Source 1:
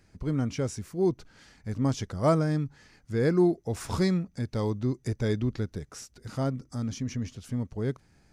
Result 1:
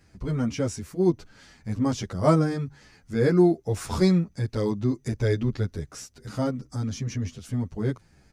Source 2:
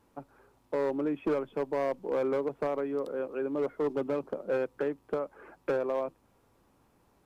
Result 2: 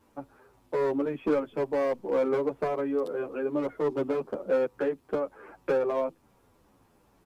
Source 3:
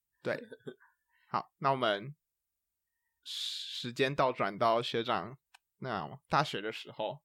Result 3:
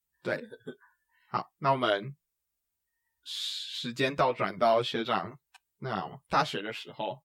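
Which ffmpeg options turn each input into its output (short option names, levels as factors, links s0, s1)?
-filter_complex "[0:a]asplit=2[s0][s1];[s1]adelay=9.5,afreqshift=-2.6[s2];[s0][s2]amix=inputs=2:normalize=1,volume=2"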